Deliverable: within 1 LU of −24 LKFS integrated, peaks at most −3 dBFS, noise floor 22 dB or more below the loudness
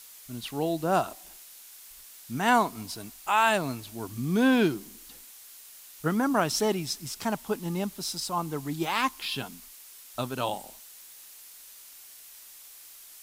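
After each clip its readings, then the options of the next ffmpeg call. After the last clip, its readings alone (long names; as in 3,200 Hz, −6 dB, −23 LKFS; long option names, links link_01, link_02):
background noise floor −49 dBFS; target noise floor −51 dBFS; integrated loudness −28.5 LKFS; sample peak −9.5 dBFS; target loudness −24.0 LKFS
→ -af "afftdn=noise_reduction=6:noise_floor=-49"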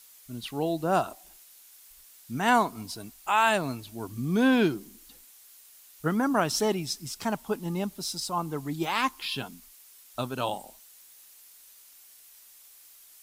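background noise floor −54 dBFS; integrated loudness −28.5 LKFS; sample peak −9.5 dBFS; target loudness −24.0 LKFS
→ -af "volume=4.5dB"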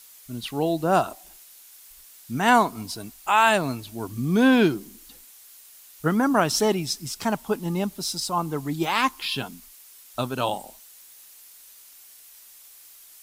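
integrated loudness −24.0 LKFS; sample peak −5.0 dBFS; background noise floor −50 dBFS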